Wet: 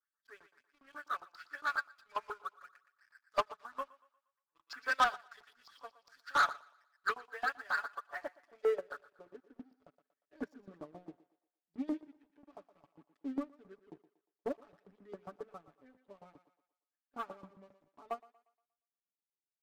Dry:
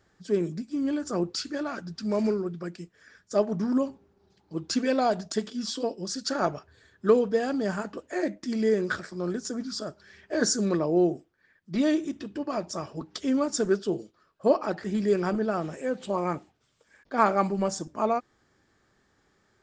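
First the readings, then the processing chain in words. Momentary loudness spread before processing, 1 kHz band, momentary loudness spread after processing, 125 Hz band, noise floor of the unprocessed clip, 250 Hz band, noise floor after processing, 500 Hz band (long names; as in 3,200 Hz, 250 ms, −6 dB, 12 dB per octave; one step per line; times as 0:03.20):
10 LU, −6.5 dB, 23 LU, −28.5 dB, −69 dBFS, −20.0 dB, below −85 dBFS, −17.0 dB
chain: band-pass filter sweep 1,300 Hz → 220 Hz, 0:07.87–0:09.72
comb filter 7 ms, depth 94%
auto-filter band-pass saw up 7.4 Hz 890–4,800 Hz
leveller curve on the samples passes 3
feedback echo with a high-pass in the loop 118 ms, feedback 43%, high-pass 340 Hz, level −10 dB
expander for the loud parts 2.5 to 1, over −42 dBFS
level +6 dB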